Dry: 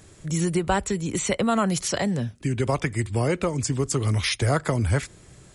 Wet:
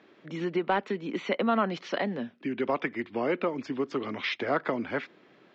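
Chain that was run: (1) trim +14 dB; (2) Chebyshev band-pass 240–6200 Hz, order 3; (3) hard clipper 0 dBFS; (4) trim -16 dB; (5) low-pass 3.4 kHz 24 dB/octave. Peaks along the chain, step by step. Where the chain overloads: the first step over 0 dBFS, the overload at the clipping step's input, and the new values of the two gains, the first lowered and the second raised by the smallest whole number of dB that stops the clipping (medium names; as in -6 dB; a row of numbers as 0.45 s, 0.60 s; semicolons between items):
+5.0 dBFS, +4.0 dBFS, 0.0 dBFS, -16.0 dBFS, -15.5 dBFS; step 1, 4.0 dB; step 1 +10 dB, step 4 -12 dB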